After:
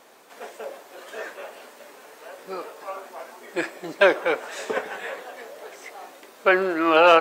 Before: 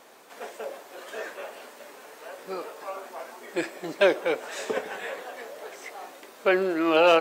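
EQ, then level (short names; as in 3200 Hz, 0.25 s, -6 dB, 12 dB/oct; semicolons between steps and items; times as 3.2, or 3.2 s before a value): dynamic EQ 1300 Hz, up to +8 dB, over -37 dBFS, Q 0.76; 0.0 dB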